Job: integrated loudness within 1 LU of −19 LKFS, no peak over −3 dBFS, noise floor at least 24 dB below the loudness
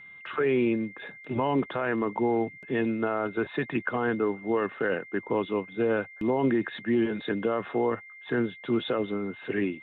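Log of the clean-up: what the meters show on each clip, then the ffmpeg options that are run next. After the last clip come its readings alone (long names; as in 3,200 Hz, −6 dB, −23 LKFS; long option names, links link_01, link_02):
interfering tone 2,100 Hz; level of the tone −45 dBFS; integrated loudness −28.5 LKFS; sample peak −16.5 dBFS; target loudness −19.0 LKFS
→ -af "bandreject=frequency=2100:width=30"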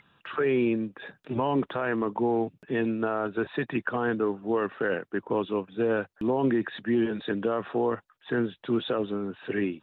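interfering tone none found; integrated loudness −28.5 LKFS; sample peak −16.5 dBFS; target loudness −19.0 LKFS
→ -af "volume=9.5dB"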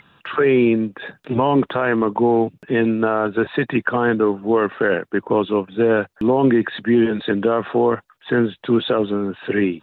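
integrated loudness −19.0 LKFS; sample peak −7.0 dBFS; background noise floor −59 dBFS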